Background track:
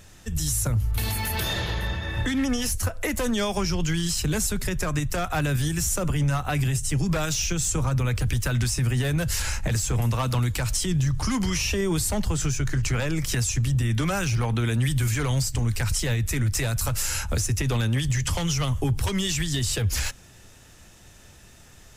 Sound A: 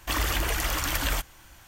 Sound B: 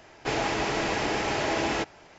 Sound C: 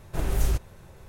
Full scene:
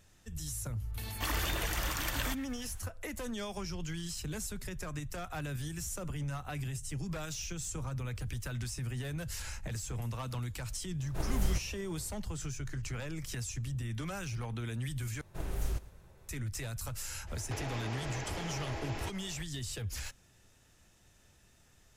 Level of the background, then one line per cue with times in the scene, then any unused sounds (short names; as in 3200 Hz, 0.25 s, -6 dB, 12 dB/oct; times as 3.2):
background track -14 dB
1.13 add A -7.5 dB
11.01 add C -7 dB
15.21 replace with C -10.5 dB + feedback echo 0.111 s, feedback 43%, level -19.5 dB
17.26 add B -2.5 dB, fades 0.02 s + compressor 5:1, threshold -37 dBFS